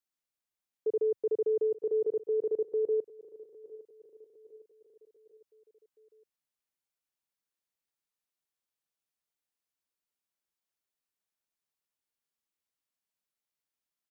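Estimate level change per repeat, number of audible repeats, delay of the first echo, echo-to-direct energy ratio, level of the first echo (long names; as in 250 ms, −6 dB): −6.0 dB, 3, 808 ms, −16.5 dB, −18.0 dB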